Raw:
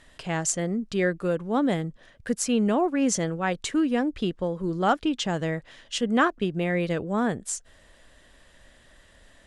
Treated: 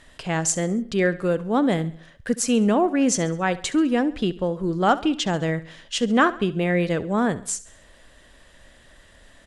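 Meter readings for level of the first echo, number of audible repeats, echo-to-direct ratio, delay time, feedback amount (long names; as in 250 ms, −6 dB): −17.5 dB, 3, −16.5 dB, 68 ms, 47%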